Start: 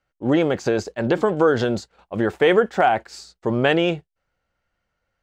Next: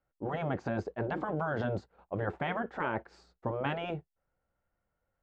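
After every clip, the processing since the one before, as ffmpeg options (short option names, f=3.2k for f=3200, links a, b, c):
-af "afftfilt=real='re*lt(hypot(re,im),0.447)':imag='im*lt(hypot(re,im),0.447)':win_size=1024:overlap=0.75,lowpass=1.1k,aemphasis=mode=production:type=75kf,volume=-5dB"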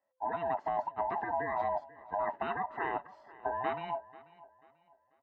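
-af "afftfilt=real='real(if(lt(b,1008),b+24*(1-2*mod(floor(b/24),2)),b),0)':imag='imag(if(lt(b,1008),b+24*(1-2*mod(floor(b/24),2)),b),0)':win_size=2048:overlap=0.75,bandpass=f=850:t=q:w=0.98:csg=0,aecho=1:1:489|978|1467:0.1|0.034|0.0116,volume=2.5dB"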